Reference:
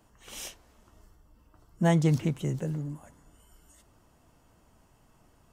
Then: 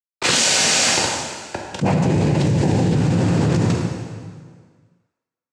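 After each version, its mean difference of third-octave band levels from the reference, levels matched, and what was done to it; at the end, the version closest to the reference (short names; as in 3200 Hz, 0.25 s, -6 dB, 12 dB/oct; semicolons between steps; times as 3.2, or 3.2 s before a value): 13.5 dB: bit-crush 8-bit; noise vocoder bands 8; plate-style reverb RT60 1.8 s, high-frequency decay 0.85×, DRR -1 dB; fast leveller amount 100%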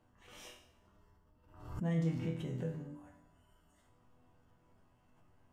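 5.0 dB: tone controls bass +2 dB, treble -11 dB; limiter -20.5 dBFS, peak gain reduction 8 dB; resonator bank E2 minor, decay 0.62 s; backwards sustainer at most 80 dB/s; gain +8.5 dB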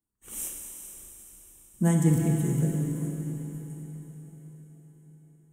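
7.5 dB: gate -55 dBFS, range -27 dB; EQ curve 120 Hz 0 dB, 310 Hz +3 dB, 640 Hz -9 dB, 1300 Hz -4 dB, 5000 Hz -13 dB, 8300 Hz +11 dB; diffused feedback echo 0.455 s, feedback 55%, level -14 dB; Schroeder reverb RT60 3.4 s, combs from 31 ms, DRR 1 dB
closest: second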